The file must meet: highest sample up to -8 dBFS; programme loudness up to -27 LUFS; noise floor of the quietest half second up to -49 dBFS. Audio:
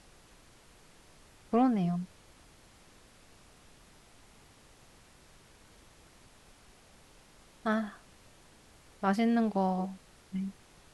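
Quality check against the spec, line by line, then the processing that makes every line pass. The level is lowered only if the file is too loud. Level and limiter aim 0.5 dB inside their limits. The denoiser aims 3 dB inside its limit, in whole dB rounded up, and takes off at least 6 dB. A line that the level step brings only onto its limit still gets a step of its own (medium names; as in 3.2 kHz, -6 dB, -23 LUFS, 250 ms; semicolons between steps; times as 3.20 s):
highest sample -15.5 dBFS: pass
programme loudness -31.5 LUFS: pass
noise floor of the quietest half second -59 dBFS: pass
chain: none needed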